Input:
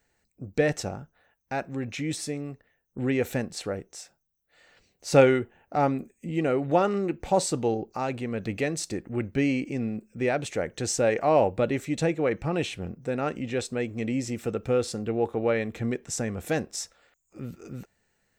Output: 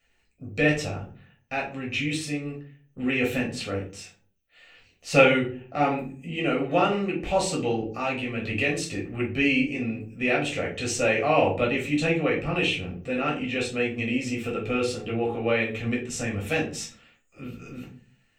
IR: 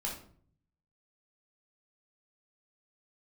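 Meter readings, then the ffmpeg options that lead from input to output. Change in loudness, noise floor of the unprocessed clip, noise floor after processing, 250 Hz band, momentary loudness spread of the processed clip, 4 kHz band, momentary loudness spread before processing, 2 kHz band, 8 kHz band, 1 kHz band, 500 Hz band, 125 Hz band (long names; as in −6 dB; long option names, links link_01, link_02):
+2.0 dB, −74 dBFS, −66 dBFS, +1.5 dB, 15 LU, +6.0 dB, 13 LU, +8.0 dB, −1.5 dB, +1.0 dB, −0.5 dB, +0.5 dB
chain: -filter_complex "[0:a]equalizer=frequency=2700:width_type=o:width=0.72:gain=15[link_01];[1:a]atrim=start_sample=2205,asetrate=61740,aresample=44100[link_02];[link_01][link_02]afir=irnorm=-1:irlink=0"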